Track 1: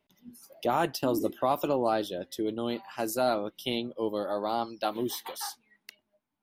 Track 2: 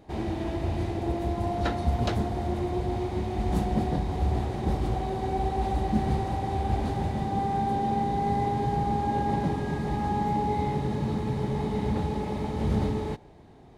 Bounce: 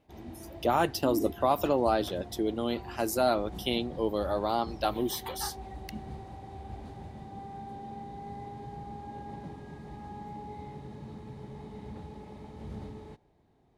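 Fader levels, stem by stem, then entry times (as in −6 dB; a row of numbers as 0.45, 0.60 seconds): +1.0, −15.5 decibels; 0.00, 0.00 seconds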